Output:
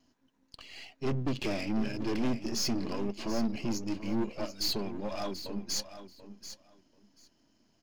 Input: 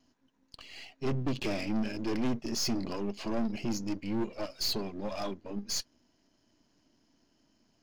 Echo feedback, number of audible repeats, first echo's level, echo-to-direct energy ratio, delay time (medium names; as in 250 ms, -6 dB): 16%, 2, -12.0 dB, -12.0 dB, 736 ms